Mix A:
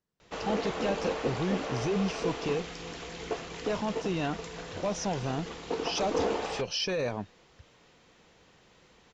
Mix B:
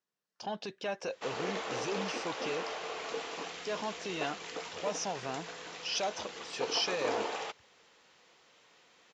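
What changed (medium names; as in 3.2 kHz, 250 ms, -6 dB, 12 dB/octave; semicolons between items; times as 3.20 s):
background: entry +0.90 s; master: add high-pass 740 Hz 6 dB/octave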